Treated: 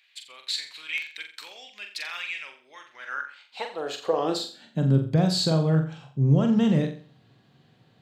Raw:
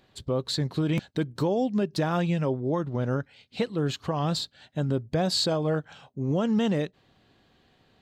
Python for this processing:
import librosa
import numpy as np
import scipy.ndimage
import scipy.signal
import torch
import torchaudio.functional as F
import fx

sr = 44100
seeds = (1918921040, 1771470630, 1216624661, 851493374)

y = fx.filter_sweep_highpass(x, sr, from_hz=2300.0, to_hz=130.0, start_s=2.86, end_s=5.05, q=4.3)
y = fx.room_flutter(y, sr, wall_m=7.5, rt60_s=0.41)
y = y * librosa.db_to_amplitude(-1.5)